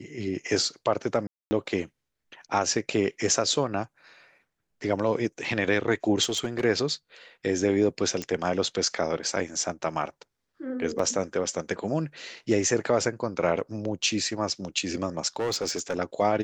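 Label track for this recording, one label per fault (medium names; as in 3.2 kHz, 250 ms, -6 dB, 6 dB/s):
1.270000	1.510000	dropout 240 ms
6.230000	6.650000	clipped -22 dBFS
8.220000	8.220000	pop -17 dBFS
10.990000	10.990000	dropout 4.1 ms
15.360000	15.980000	clipped -23.5 dBFS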